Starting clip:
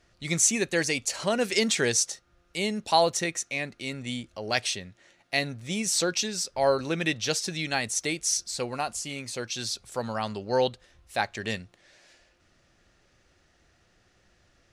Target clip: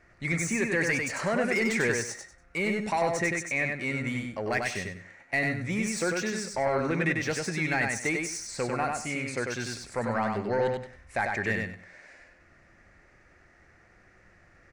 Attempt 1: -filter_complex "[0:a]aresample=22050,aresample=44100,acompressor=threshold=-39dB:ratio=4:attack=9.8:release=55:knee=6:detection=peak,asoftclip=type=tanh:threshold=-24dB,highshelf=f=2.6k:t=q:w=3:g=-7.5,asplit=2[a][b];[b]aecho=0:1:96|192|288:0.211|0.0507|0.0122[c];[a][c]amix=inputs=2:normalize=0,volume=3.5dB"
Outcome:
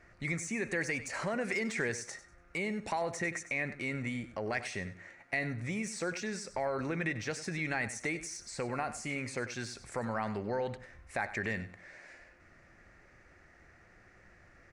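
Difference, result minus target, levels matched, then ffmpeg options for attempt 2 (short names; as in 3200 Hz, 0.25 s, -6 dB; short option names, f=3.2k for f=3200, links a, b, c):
compressor: peak gain reduction +8.5 dB; echo-to-direct -10 dB
-filter_complex "[0:a]aresample=22050,aresample=44100,acompressor=threshold=-28dB:ratio=4:attack=9.8:release=55:knee=6:detection=peak,asoftclip=type=tanh:threshold=-24dB,highshelf=f=2.6k:t=q:w=3:g=-7.5,asplit=2[a][b];[b]aecho=0:1:96|192|288:0.668|0.16|0.0385[c];[a][c]amix=inputs=2:normalize=0,volume=3.5dB"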